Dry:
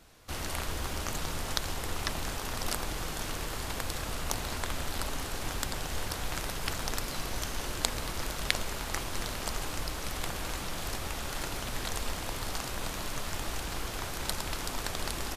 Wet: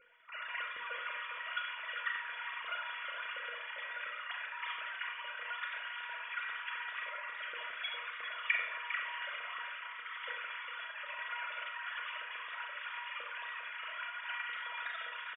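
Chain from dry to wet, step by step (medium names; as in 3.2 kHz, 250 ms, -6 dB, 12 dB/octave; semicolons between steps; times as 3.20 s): formants replaced by sine waves; static phaser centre 1.9 kHz, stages 4; feedback comb 480 Hz, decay 0.16 s, harmonics all, mix 80%; delay 403 ms -10 dB; Schroeder reverb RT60 0.57 s, combs from 29 ms, DRR 1.5 dB; trim +3 dB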